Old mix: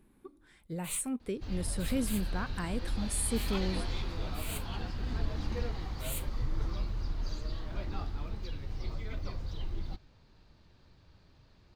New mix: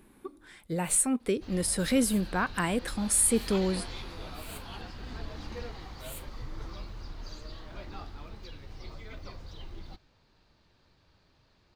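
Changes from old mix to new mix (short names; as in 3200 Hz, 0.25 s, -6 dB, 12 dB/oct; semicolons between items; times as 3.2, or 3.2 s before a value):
speech +10.5 dB; first sound -5.0 dB; master: add low shelf 260 Hz -8 dB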